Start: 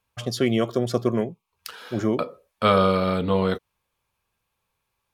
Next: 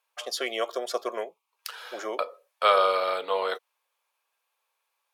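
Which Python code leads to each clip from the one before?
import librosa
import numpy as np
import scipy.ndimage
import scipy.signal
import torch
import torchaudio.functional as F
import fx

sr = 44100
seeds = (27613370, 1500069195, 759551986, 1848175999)

y = scipy.signal.sosfilt(scipy.signal.butter(4, 530.0, 'highpass', fs=sr, output='sos'), x)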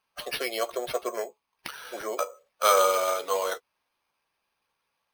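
y = fx.spec_quant(x, sr, step_db=15)
y = fx.doubler(y, sr, ms=14.0, db=-11.0)
y = np.repeat(y[::6], 6)[:len(y)]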